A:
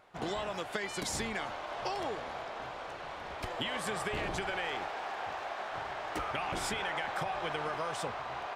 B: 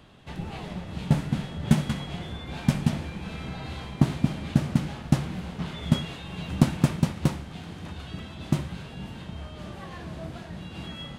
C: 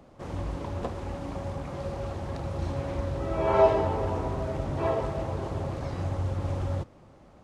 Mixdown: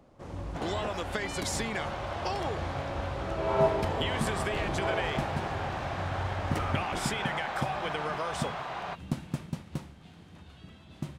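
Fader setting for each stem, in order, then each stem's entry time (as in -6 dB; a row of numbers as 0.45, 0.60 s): +2.5, -12.5, -5.0 dB; 0.40, 2.50, 0.00 s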